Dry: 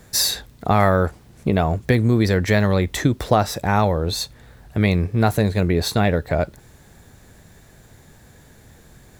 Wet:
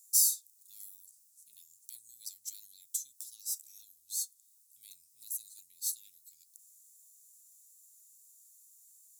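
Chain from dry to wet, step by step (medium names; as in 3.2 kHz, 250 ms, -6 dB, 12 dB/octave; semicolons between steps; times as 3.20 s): inverse Chebyshev high-pass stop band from 1.7 kHz, stop band 70 dB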